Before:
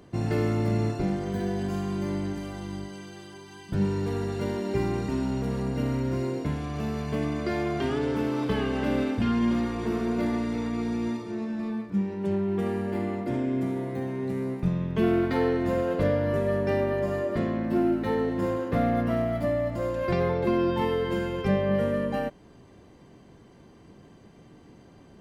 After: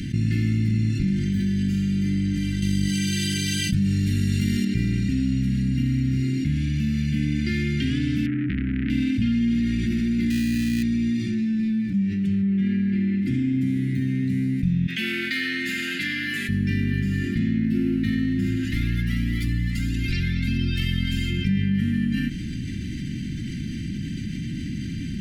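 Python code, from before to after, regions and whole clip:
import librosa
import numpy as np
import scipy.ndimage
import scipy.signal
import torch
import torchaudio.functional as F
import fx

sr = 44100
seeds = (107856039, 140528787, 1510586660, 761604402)

y = fx.chain(x, sr, fx.high_shelf(hz=6700.0, db=12.0),
    fx.env_flatten(amount_pct=50), at=(2.62, 4.65))
y = fx.chain(y, sr, fx.lowpass(hz=1300.0, slope=24),
    fx.transformer_sat(knee_hz=1100.0), at=(8.26, 8.9))
y = fx.chain(y, sr, fx.highpass(hz=43.0, slope=12),
    fx.sample_hold(seeds[0], rate_hz=2200.0, jitter_pct=0), at=(10.3, 10.83))
y = fx.chain(y, sr, fx.lowpass(hz=3500.0, slope=12),
    fx.comb(ms=5.6, depth=0.58), at=(12.42, 13.22))
y = fx.chain(y, sr, fx.highpass(hz=750.0, slope=12),
    fx.notch(hz=5700.0, q=18.0), at=(14.87, 16.49))
y = fx.spec_clip(y, sr, under_db=18, at=(18.63, 21.29), fade=0.02)
y = fx.peak_eq(y, sr, hz=1800.0, db=-5.5, octaves=1.4, at=(18.63, 21.29), fade=0.02)
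y = fx.comb_cascade(y, sr, direction='rising', hz=1.6, at=(18.63, 21.29), fade=0.02)
y = scipy.signal.sosfilt(scipy.signal.cheby2(4, 50, [470.0, 1100.0], 'bandstop', fs=sr, output='sos'), y)
y = fx.high_shelf(y, sr, hz=5100.0, db=-7.0)
y = fx.env_flatten(y, sr, amount_pct=70)
y = y * 10.0 ** (1.5 / 20.0)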